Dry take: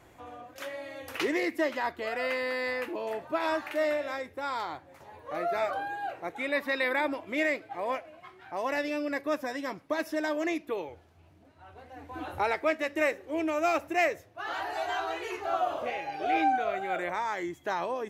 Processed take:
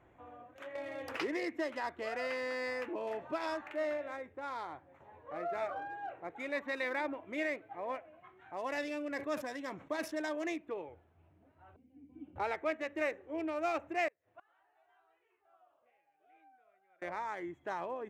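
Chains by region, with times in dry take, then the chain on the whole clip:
0:00.75–0:03.61: parametric band 5,100 Hz +12 dB 0.24 octaves + multiband upward and downward compressor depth 70%
0:08.37–0:10.56: parametric band 7,500 Hz +9 dB 1.9 octaves + level that may fall only so fast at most 110 dB per second
0:11.76–0:12.36: formant resonators in series i + parametric band 190 Hz +9 dB 0.96 octaves
0:14.08–0:17.02: low-shelf EQ 490 Hz −10 dB + gate with flip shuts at −36 dBFS, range −28 dB
whole clip: adaptive Wiener filter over 9 samples; high-shelf EQ 9,000 Hz −9.5 dB; level −7 dB

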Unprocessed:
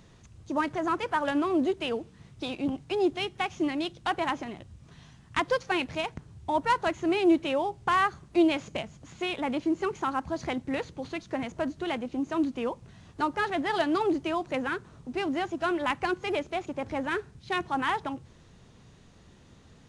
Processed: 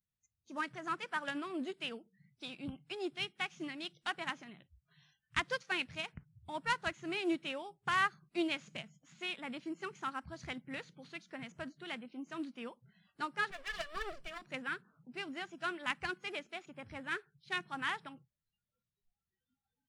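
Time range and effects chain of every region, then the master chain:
0:13.51–0:14.42: lower of the sound and its delayed copy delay 1.7 ms + high-shelf EQ 7,300 Hz −2.5 dB
whole clip: noise reduction from a noise print of the clip's start 30 dB; flat-topped bell 530 Hz −9.5 dB 2.3 octaves; expander for the loud parts 1.5 to 1, over −41 dBFS; level −2 dB

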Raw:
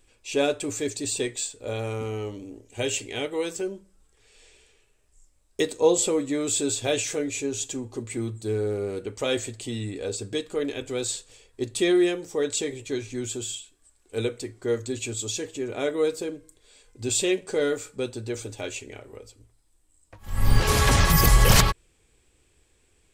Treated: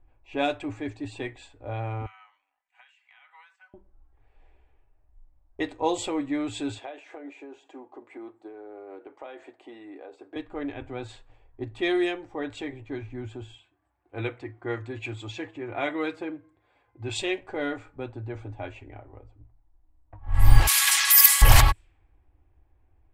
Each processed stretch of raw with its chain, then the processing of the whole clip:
0:02.06–0:03.74: inverse Chebyshev high-pass filter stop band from 390 Hz, stop band 60 dB + downward compressor 12 to 1, threshold −39 dBFS + comb filter 4 ms, depth 39%
0:06.78–0:10.36: high-pass filter 340 Hz 24 dB per octave + downward compressor 10 to 1, threshold −31 dBFS
0:13.58–0:17.19: high-pass filter 77 Hz 24 dB per octave + parametric band 1,900 Hz +4.5 dB 2.3 octaves + comb filter 5.8 ms, depth 34%
0:20.67–0:21.42: Bessel high-pass filter 1,800 Hz, order 4 + high-shelf EQ 2,700 Hz +10 dB
whole clip: drawn EQ curve 100 Hz 0 dB, 190 Hz −18 dB, 300 Hz −2 dB, 450 Hz −14 dB, 750 Hz +4 dB, 1,300 Hz −2 dB, 2,000 Hz +1 dB, 6,000 Hz −6 dB, 12,000 Hz +2 dB; low-pass that shuts in the quiet parts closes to 930 Hz, open at −18 dBFS; low-shelf EQ 220 Hz +4.5 dB; level +1 dB

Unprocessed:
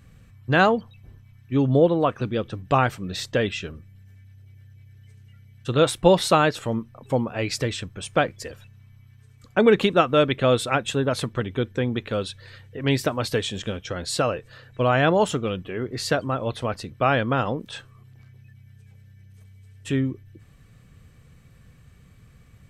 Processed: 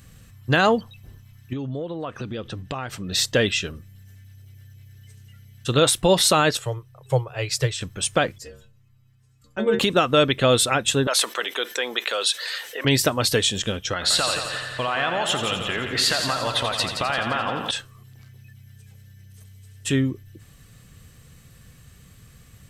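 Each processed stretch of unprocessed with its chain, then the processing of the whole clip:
0:01.53–0:03.12: high-shelf EQ 7,400 Hz −10 dB + downward compressor 8 to 1, threshold −29 dBFS
0:06.57–0:07.81: Chebyshev band-stop filter 140–400 Hz + parametric band 140 Hz +7.5 dB 0.56 octaves + expander for the loud parts, over −30 dBFS
0:08.38–0:09.79: spectral tilt −1.5 dB per octave + stiff-string resonator 68 Hz, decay 0.47 s, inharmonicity 0.008
0:11.07–0:12.85: Bessel high-pass filter 710 Hz, order 4 + envelope flattener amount 50%
0:13.93–0:17.71: flat-topped bell 1,600 Hz +11 dB 2.9 octaves + downward compressor 5 to 1, threshold −26 dBFS + echo machine with several playback heads 86 ms, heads first and second, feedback 53%, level −9 dB
whole clip: high-shelf EQ 3,200 Hz +12 dB; notch filter 2,300 Hz, Q 21; boost into a limiter +8.5 dB; level −6.5 dB

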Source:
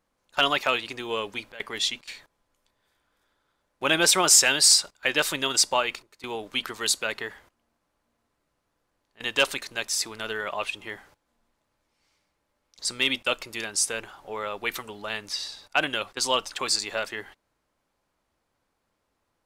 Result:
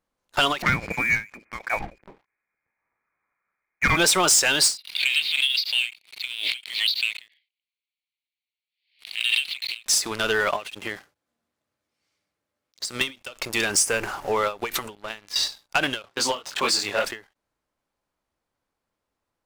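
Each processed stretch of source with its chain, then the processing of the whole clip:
0:00.62–0:03.97: high-pass filter 190 Hz 24 dB per octave + voice inversion scrambler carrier 2,700 Hz
0:04.77–0:09.86: elliptic band-pass filter 2,200–4,400 Hz + background raised ahead of every attack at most 100 dB per second
0:10.56–0:13.01: high-pass filter 73 Hz 24 dB per octave + parametric band 930 Hz −7.5 dB 0.25 octaves + downward compressor 16 to 1, threshold −35 dBFS
0:13.70–0:14.32: mu-law and A-law mismatch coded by mu + Butterworth band-reject 3,700 Hz, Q 1.9
0:14.95–0:15.36: high-shelf EQ 4,200 Hz −4.5 dB + tuned comb filter 340 Hz, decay 0.87 s, mix 70%
0:16.02–0:17.04: high-pass filter 85 Hz 24 dB per octave + high-shelf EQ 6,400 Hz −9.5 dB + micro pitch shift up and down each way 58 cents
whole clip: downward compressor 3 to 1, threshold −27 dBFS; leveller curve on the samples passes 3; every ending faded ahead of time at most 220 dB per second

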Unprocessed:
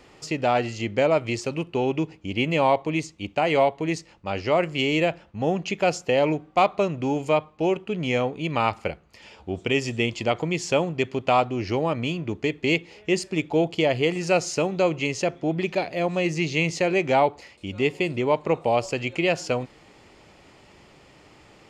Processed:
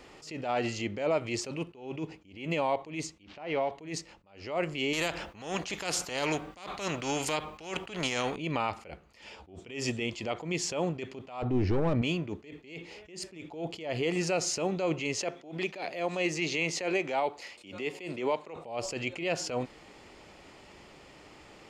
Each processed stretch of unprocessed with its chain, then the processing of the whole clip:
0:03.23–0:03.71: spike at every zero crossing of −25.5 dBFS + Bessel low-pass filter 2,900 Hz, order 6 + downward compressor 5 to 1, threshold −26 dBFS
0:04.93–0:08.36: high-shelf EQ 7,600 Hz +5 dB + every bin compressed towards the loudest bin 2 to 1
0:11.42–0:12.02: hard clipping −24.5 dBFS + spectral tilt −3.5 dB per octave
0:15.17–0:18.56: high-pass filter 350 Hz 6 dB per octave + multiband upward and downward compressor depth 40%
whole clip: parametric band 120 Hz −5 dB 1.1 octaves; brickwall limiter −19 dBFS; level that may rise only so fast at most 110 dB per second

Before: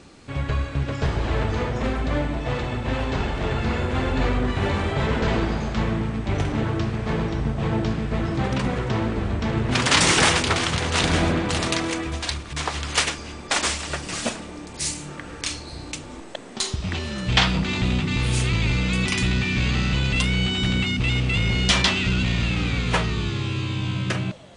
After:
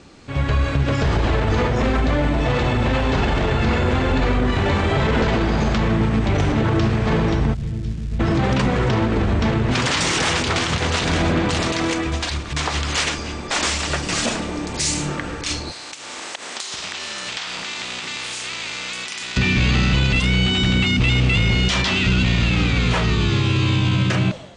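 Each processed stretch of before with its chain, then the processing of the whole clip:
0:07.53–0:08.19: guitar amp tone stack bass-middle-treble 10-0-1 + surface crackle 470 per second −45 dBFS
0:15.71–0:19.36: compressing power law on the bin magnitudes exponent 0.62 + high-pass filter 1,100 Hz 6 dB per octave + downward compressor 10 to 1, threshold −38 dBFS
whole clip: low-pass filter 8,100 Hz 24 dB per octave; automatic gain control; brickwall limiter −12 dBFS; level +1.5 dB

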